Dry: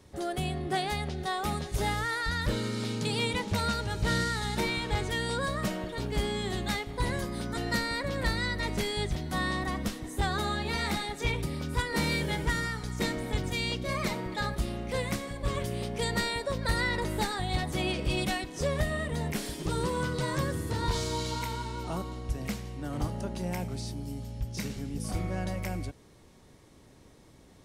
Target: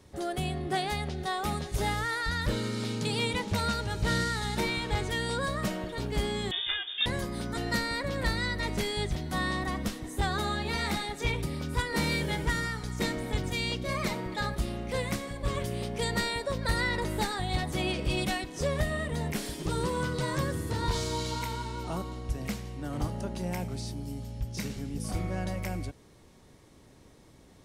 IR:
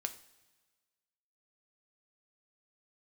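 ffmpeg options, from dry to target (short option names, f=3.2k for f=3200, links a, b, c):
-filter_complex "[0:a]asettb=1/sr,asplit=3[a][b][c];[a]atrim=end=6.514[d];[b]atrim=start=6.51:end=7.06,asetpts=PTS-STARTPTS,afade=t=in:d=0.004:c=qsin,afade=t=out:st=0.546:d=0.004:c=qsin,lowpass=f=3.1k:t=q:w=0.5098,lowpass=f=3.1k:t=q:w=0.6013,lowpass=f=3.1k:t=q:w=0.9,lowpass=f=3.1k:t=q:w=2.563,afreqshift=-3700[e];[c]atrim=start=7.056[f];[d][e]acrossfade=d=0.004:c1=hsin:c2=qsin[g];[g][f]acrossfade=d=0.004:c1=qsin:c2=hsin"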